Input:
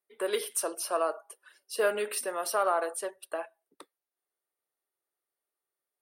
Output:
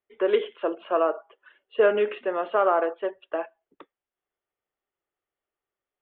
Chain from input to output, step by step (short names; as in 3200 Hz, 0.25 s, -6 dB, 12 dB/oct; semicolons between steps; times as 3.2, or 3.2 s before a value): dynamic EQ 350 Hz, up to +6 dB, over -41 dBFS, Q 0.82; steep low-pass 3400 Hz 96 dB/oct; low shelf 130 Hz +10 dB; gain +3 dB